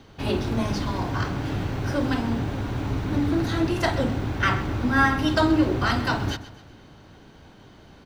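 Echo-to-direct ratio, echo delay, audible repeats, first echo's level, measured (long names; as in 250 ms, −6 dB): −14.5 dB, 128 ms, 3, −15.5 dB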